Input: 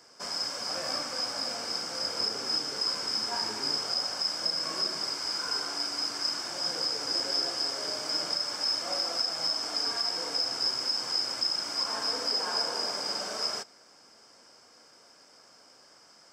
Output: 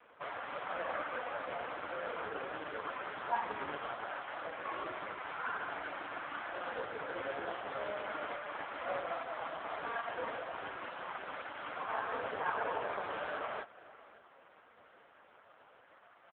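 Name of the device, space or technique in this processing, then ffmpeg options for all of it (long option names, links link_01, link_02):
satellite phone: -af "highpass=390,lowpass=3100,aecho=1:1:542:0.106,volume=5dB" -ar 8000 -c:a libopencore_amrnb -b:a 4750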